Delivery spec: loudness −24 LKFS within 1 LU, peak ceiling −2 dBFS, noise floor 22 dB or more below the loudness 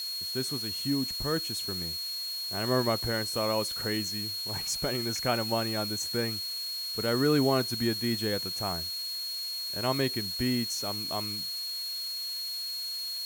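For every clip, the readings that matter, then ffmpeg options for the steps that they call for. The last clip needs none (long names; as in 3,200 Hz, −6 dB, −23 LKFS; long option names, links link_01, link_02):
interfering tone 4,300 Hz; level of the tone −33 dBFS; background noise floor −36 dBFS; target noise floor −52 dBFS; integrated loudness −29.5 LKFS; sample peak −14.0 dBFS; target loudness −24.0 LKFS
→ -af "bandreject=frequency=4300:width=30"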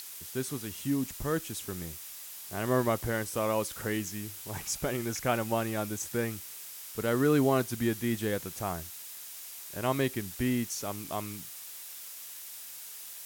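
interfering tone none found; background noise floor −45 dBFS; target noise floor −55 dBFS
→ -af "afftdn=noise_reduction=10:noise_floor=-45"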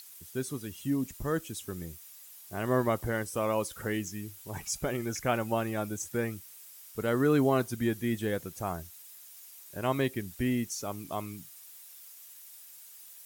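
background noise floor −51 dBFS; target noise floor −54 dBFS
→ -af "afftdn=noise_reduction=6:noise_floor=-51"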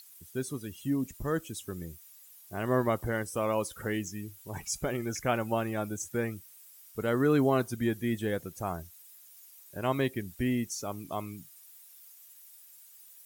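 background noise floor −55 dBFS; integrated loudness −32.0 LKFS; sample peak −15.0 dBFS; target loudness −24.0 LKFS
→ -af "volume=8dB"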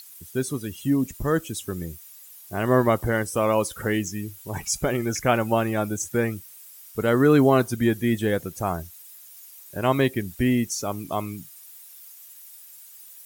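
integrated loudness −24.0 LKFS; sample peak −7.0 dBFS; background noise floor −47 dBFS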